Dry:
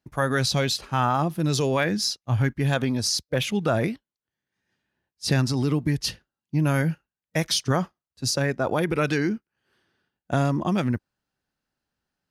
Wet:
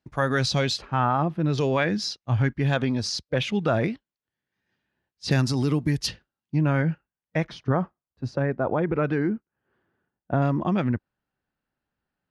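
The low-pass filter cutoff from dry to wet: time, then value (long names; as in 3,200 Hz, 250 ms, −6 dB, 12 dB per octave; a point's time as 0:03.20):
5,900 Hz
from 0:00.82 2,300 Hz
from 0:01.58 4,500 Hz
from 0:05.31 11,000 Hz
from 0:06.07 4,600 Hz
from 0:06.59 2,400 Hz
from 0:07.47 1,400 Hz
from 0:10.42 2,700 Hz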